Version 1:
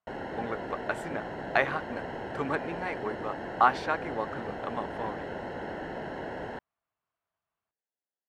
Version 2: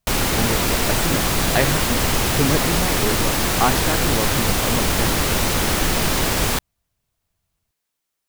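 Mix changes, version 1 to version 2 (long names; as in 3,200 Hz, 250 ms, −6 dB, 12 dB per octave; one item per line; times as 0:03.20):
background: remove moving average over 37 samples
master: remove resonant band-pass 1,300 Hz, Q 1.1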